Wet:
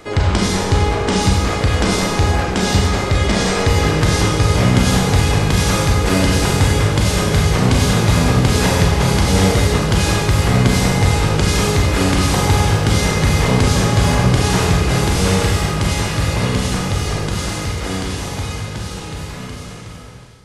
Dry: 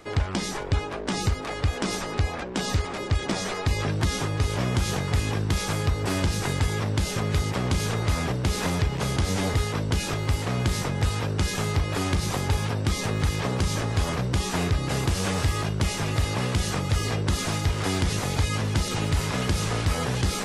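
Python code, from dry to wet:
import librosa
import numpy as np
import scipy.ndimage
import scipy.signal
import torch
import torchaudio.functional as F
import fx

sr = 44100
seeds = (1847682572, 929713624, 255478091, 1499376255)

y = fx.fade_out_tail(x, sr, length_s=6.33)
y = fx.rev_schroeder(y, sr, rt60_s=1.4, comb_ms=32, drr_db=-2.0)
y = F.gain(torch.from_numpy(y), 7.5).numpy()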